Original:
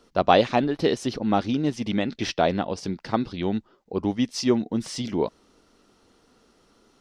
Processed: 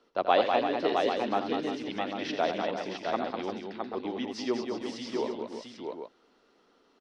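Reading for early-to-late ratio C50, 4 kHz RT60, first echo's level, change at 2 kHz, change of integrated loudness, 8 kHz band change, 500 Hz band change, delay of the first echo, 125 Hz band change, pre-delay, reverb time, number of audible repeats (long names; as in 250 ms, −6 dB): no reverb audible, no reverb audible, −9.0 dB, −3.5 dB, −6.0 dB, −12.0 dB, −4.0 dB, 83 ms, −17.0 dB, no reverb audible, no reverb audible, 5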